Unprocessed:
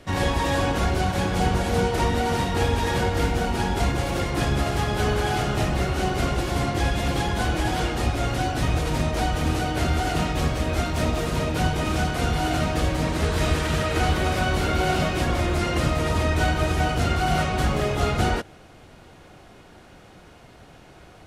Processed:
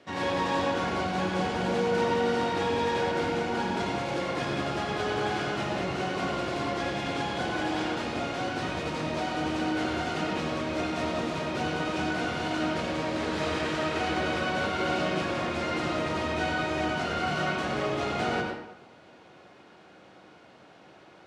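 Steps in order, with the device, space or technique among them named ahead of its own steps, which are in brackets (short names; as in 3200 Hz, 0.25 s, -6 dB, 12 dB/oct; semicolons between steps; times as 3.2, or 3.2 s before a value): supermarket ceiling speaker (BPF 210–5600 Hz; reverb RT60 0.90 s, pre-delay 83 ms, DRR 0.5 dB); gain -6 dB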